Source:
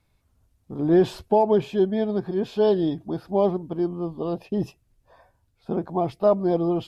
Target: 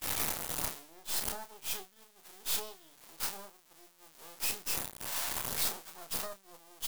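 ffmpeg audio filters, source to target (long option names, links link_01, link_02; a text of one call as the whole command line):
ffmpeg -i in.wav -filter_complex "[0:a]aeval=exprs='val(0)+0.5*0.0501*sgn(val(0))':channel_layout=same,acompressor=threshold=-27dB:ratio=3,aderivative,aeval=exprs='max(val(0),0)':channel_layout=same,asplit=2[link_01][link_02];[link_02]adelay=31,volume=-7.5dB[link_03];[link_01][link_03]amix=inputs=2:normalize=0,agate=range=-33dB:threshold=-40dB:ratio=3:detection=peak,equalizer=frequency=900:width=1.2:gain=4.5,volume=7.5dB" out.wav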